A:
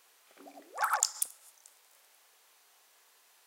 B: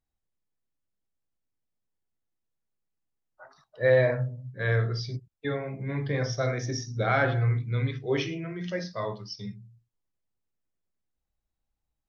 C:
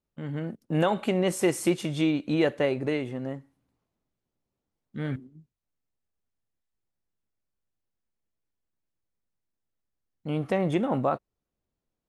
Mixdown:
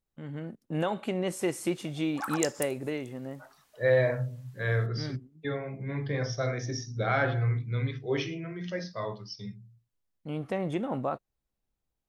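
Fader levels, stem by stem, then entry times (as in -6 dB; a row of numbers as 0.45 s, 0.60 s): -5.0 dB, -2.5 dB, -5.5 dB; 1.40 s, 0.00 s, 0.00 s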